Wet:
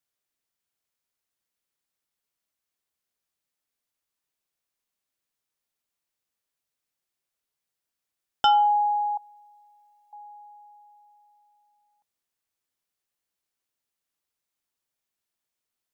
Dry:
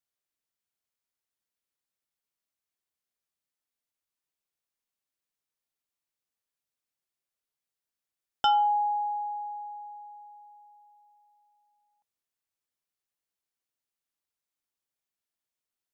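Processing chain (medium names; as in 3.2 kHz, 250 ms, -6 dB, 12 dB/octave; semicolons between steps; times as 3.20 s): 9.17–10.13 s: comb 1.8 ms, depth 97%; trim +4 dB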